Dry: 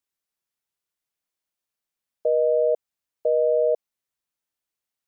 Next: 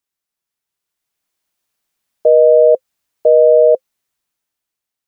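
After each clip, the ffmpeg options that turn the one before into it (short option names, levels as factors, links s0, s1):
-af "bandreject=f=520:w=13,dynaudnorm=f=320:g=7:m=3.16,volume=1.41"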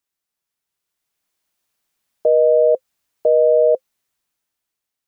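-af "alimiter=limit=0.447:level=0:latency=1:release=32"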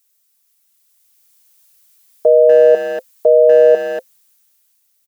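-filter_complex "[0:a]aecho=1:1:4.5:0.35,crystalizer=i=5.5:c=0,asplit=2[s0][s1];[s1]adelay=240,highpass=300,lowpass=3400,asoftclip=type=hard:threshold=0.211,volume=0.447[s2];[s0][s2]amix=inputs=2:normalize=0,volume=1.26"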